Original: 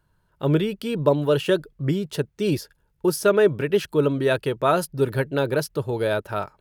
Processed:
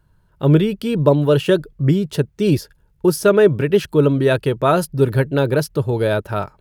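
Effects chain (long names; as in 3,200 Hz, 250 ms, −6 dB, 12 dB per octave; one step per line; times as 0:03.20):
low-shelf EQ 260 Hz +7.5 dB
level +3 dB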